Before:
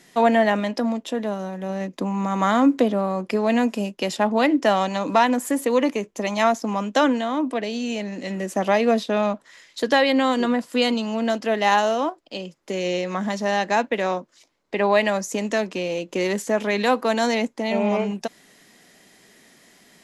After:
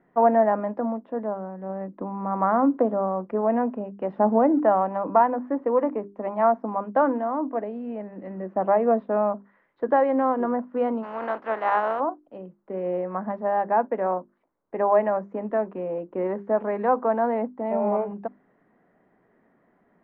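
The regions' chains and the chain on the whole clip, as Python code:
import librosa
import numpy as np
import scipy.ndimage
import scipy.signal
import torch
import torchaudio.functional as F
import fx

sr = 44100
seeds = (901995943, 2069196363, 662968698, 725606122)

y = fx.chain(x, sr, fx.crossing_spikes(level_db=-19.5),
    fx.tilt_shelf(db=6.5, hz=800.0), at=(4.16, 4.6))
y = fx.spec_flatten(y, sr, power=0.5, at=(11.02, 11.99), fade=0.02)
y = fx.riaa(y, sr, side='recording', at=(11.02, 11.99), fade=0.02)
y = scipy.signal.sosfilt(scipy.signal.butter(4, 1400.0, 'lowpass', fs=sr, output='sos'), y)
y = fx.hum_notches(y, sr, base_hz=50, count=8)
y = fx.dynamic_eq(y, sr, hz=770.0, q=0.75, threshold_db=-31.0, ratio=4.0, max_db=6)
y = y * librosa.db_to_amplitude(-5.5)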